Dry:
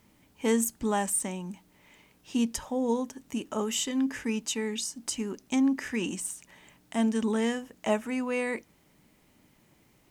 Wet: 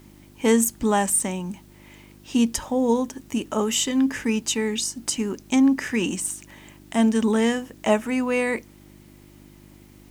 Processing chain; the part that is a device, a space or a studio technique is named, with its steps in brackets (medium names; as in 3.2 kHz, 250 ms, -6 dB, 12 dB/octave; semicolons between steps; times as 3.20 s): video cassette with head-switching buzz (mains buzz 50 Hz, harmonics 7, -57 dBFS -1 dB/octave; white noise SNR 38 dB); trim +7 dB